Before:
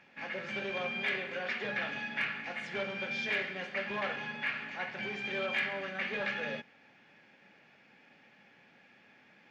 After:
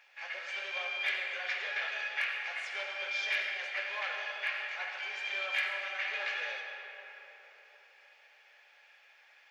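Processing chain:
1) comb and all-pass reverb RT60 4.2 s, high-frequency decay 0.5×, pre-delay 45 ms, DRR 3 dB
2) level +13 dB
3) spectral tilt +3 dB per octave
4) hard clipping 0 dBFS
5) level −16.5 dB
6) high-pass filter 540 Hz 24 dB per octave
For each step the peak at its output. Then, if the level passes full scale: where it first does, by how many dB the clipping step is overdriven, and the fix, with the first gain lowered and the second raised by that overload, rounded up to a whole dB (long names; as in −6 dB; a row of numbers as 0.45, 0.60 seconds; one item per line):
−19.0, −6.0, −2.5, −2.5, −19.0, −19.5 dBFS
no step passes full scale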